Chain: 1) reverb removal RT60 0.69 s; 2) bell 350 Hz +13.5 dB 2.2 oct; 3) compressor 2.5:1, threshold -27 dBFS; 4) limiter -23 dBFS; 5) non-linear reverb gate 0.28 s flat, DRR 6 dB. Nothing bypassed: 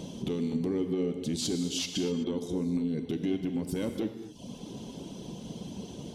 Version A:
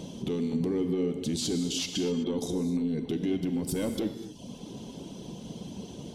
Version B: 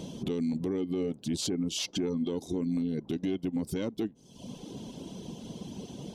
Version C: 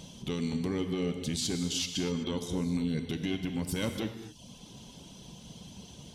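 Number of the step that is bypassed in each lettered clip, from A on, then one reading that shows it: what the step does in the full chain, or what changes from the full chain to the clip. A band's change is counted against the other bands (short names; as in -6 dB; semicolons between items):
3, mean gain reduction 8.0 dB; 5, crest factor change -3.0 dB; 2, 500 Hz band -4.5 dB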